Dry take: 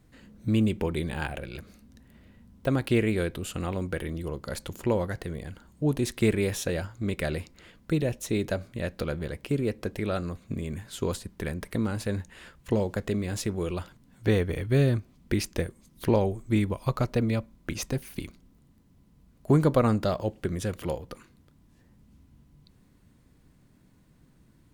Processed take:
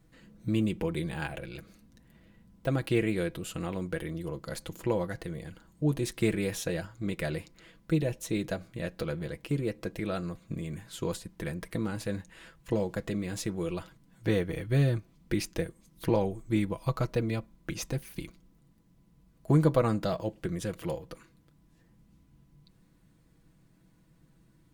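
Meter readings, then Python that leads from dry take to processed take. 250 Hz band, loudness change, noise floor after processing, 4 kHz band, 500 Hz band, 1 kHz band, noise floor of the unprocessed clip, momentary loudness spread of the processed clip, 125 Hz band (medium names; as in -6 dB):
-3.0 dB, -3.0 dB, -64 dBFS, -3.0 dB, -3.5 dB, -3.5 dB, -60 dBFS, 12 LU, -3.0 dB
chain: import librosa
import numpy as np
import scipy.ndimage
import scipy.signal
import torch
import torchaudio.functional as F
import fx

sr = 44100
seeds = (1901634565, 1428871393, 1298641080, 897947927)

y = x + 0.52 * np.pad(x, (int(6.1 * sr / 1000.0), 0))[:len(x)]
y = y * 10.0 ** (-4.0 / 20.0)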